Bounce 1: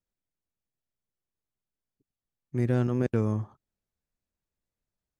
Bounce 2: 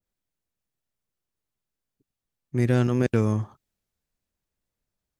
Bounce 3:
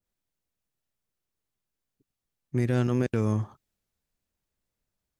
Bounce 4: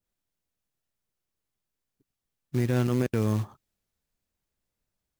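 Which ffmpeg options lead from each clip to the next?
-af "adynamicequalizer=threshold=0.00447:dfrequency=1700:dqfactor=0.7:tfrequency=1700:tqfactor=0.7:attack=5:release=100:ratio=0.375:range=3.5:mode=boostabove:tftype=highshelf,volume=4dB"
-af "alimiter=limit=-15.5dB:level=0:latency=1:release=224"
-af "acrusher=bits=5:mode=log:mix=0:aa=0.000001"

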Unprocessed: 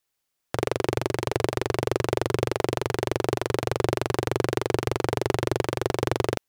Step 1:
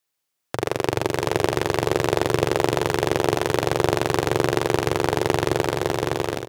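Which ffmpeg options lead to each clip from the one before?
-filter_complex "[0:a]lowshelf=f=64:g=-12,dynaudnorm=f=130:g=11:m=8dB,asplit=2[a][b];[b]aecho=0:1:44|74|142|460|614:0.211|0.158|0.126|0.178|0.376[c];[a][c]amix=inputs=2:normalize=0"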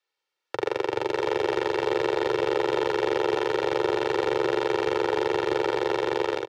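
-filter_complex "[0:a]acrossover=split=290 5000:gain=0.158 1 0.0794[a][b][c];[a][b][c]amix=inputs=3:normalize=0,aecho=1:1:2.2:0.69,alimiter=limit=-14dB:level=0:latency=1:release=13"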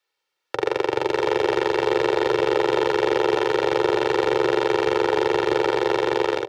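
-af "bandreject=f=96.88:t=h:w=4,bandreject=f=193.76:t=h:w=4,bandreject=f=290.64:t=h:w=4,bandreject=f=387.52:t=h:w=4,bandreject=f=484.4:t=h:w=4,bandreject=f=581.28:t=h:w=4,bandreject=f=678.16:t=h:w=4,bandreject=f=775.04:t=h:w=4,volume=4.5dB"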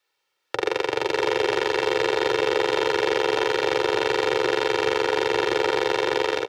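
-filter_complex "[0:a]acrossover=split=1700[a][b];[a]alimiter=limit=-16.5dB:level=0:latency=1:release=292[c];[c][b]amix=inputs=2:normalize=0,asplit=2[d][e];[e]adelay=47,volume=-9dB[f];[d][f]amix=inputs=2:normalize=0,volume=3dB"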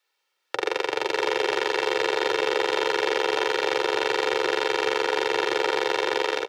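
-af "highpass=f=410:p=1"

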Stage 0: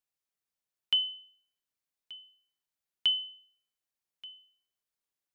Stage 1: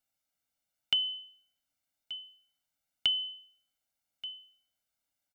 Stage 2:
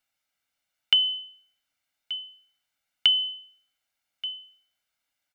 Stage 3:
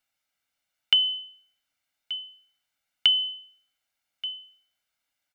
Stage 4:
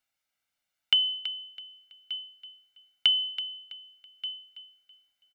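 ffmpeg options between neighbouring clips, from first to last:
-af "acompressor=threshold=-31dB:ratio=6,equalizer=f=290:w=4.3:g=13,aecho=1:1:1.4:0.97,volume=1.5dB"
-af "equalizer=f=2.1k:w=0.52:g=9.5"
-af anull
-af "aecho=1:1:328|656|984:0.251|0.0754|0.0226,volume=-2.5dB"

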